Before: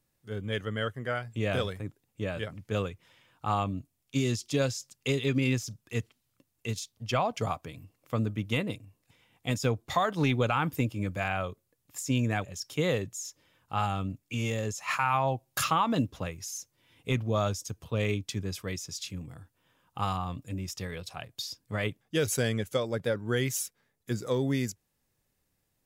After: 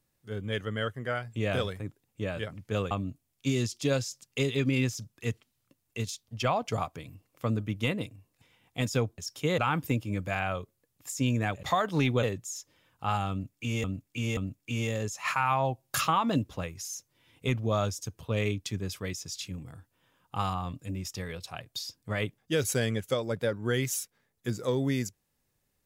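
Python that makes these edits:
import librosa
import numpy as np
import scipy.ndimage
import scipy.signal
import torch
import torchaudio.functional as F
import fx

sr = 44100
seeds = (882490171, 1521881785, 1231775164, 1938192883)

y = fx.edit(x, sr, fx.cut(start_s=2.91, length_s=0.69),
    fx.swap(start_s=9.87, length_s=0.6, other_s=12.52, other_length_s=0.4),
    fx.repeat(start_s=14.0, length_s=0.53, count=3), tone=tone)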